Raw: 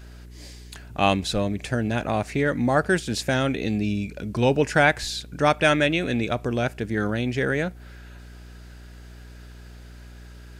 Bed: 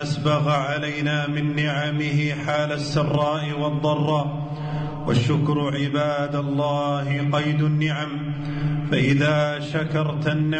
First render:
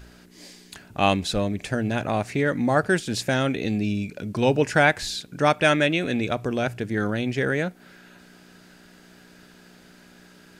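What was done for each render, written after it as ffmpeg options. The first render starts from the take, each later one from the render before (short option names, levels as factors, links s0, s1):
-af "bandreject=f=60:t=h:w=4,bandreject=f=120:t=h:w=4"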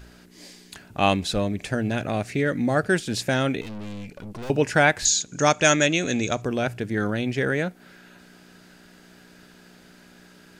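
-filter_complex "[0:a]asettb=1/sr,asplit=3[s0][s1][s2];[s0]atrim=end=1.954[s3];[s1]atrim=start=1.95:end=2.9,asetpts=PTS-STARTPTS,afade=t=in:d=0.004:c=qsin,afade=t=out:st=0.946:d=0.004:c=qsin,equalizer=f=950:w=2.1:g=-7[s4];[s2]atrim=start=2.896[s5];[s3][s4]acrossfade=d=0.004:c1=hsin:c2=qsin[s6];[s6][s5]acrossfade=d=0.004:c1=qsin:c2=hsin,asettb=1/sr,asplit=3[s7][s8][s9];[s7]atrim=end=3.614[s10];[s8]atrim=start=3.61:end=4.5,asetpts=PTS-STARTPTS,afade=t=in:d=0.004:c=qsin,afade=t=out:st=0.886:d=0.004:c=qsin,aeval=exprs='(tanh(50.1*val(0)+0.65)-tanh(0.65))/50.1':c=same[s11];[s9]atrim=start=4.496[s12];[s10][s11]acrossfade=d=0.004:c1=hsin:c2=qsin[s13];[s13][s12]acrossfade=d=0.004:c1=qsin:c2=hsin,asettb=1/sr,asplit=3[s14][s15][s16];[s14]atrim=end=5.054[s17];[s15]atrim=start=5.05:end=6.42,asetpts=PTS-STARTPTS,afade=t=in:d=0.004:c=qsin,afade=t=out:st=1.366:d=0.004:c=qsin,lowpass=f=6700:t=q:w=14[s18];[s16]atrim=start=6.416[s19];[s17][s18]acrossfade=d=0.004:c1=hsin:c2=qsin[s20];[s20][s19]acrossfade=d=0.004:c1=qsin:c2=hsin"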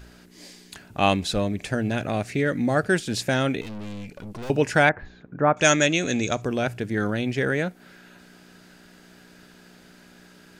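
-filter_complex "[0:a]asettb=1/sr,asplit=3[s0][s1][s2];[s0]atrim=end=4.894[s3];[s1]atrim=start=4.89:end=5.57,asetpts=PTS-STARTPTS,afade=t=in:d=0.004:c=qsin,afade=t=out:st=0.676:d=0.004:c=qsin,lowpass=f=1600:w=0.5412,lowpass=f=1600:w=1.3066[s4];[s2]atrim=start=5.566[s5];[s3][s4]acrossfade=d=0.004:c1=hsin:c2=qsin[s6];[s6][s5]acrossfade=d=0.004:c1=qsin:c2=hsin"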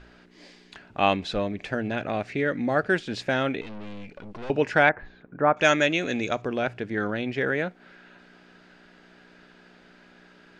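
-af "lowpass=3300,equalizer=f=94:t=o:w=2.6:g=-8"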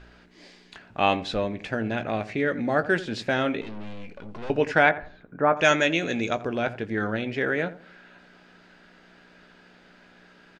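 -filter_complex "[0:a]asplit=2[s0][s1];[s1]adelay=18,volume=0.266[s2];[s0][s2]amix=inputs=2:normalize=0,asplit=2[s3][s4];[s4]adelay=85,lowpass=f=990:p=1,volume=0.211,asplit=2[s5][s6];[s6]adelay=85,lowpass=f=990:p=1,volume=0.33,asplit=2[s7][s8];[s8]adelay=85,lowpass=f=990:p=1,volume=0.33[s9];[s3][s5][s7][s9]amix=inputs=4:normalize=0"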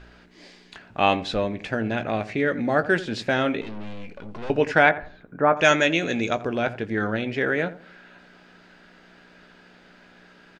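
-af "volume=1.26"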